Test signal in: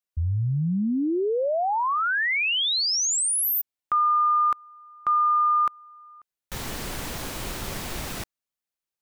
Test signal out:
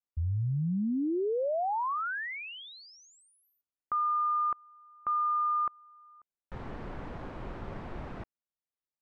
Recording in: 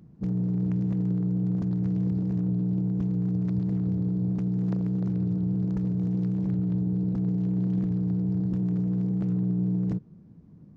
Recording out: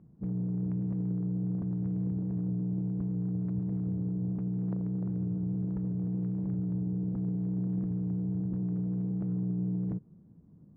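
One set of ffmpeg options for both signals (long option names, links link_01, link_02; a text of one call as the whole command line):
ffmpeg -i in.wav -af "lowpass=1300,volume=-5.5dB" out.wav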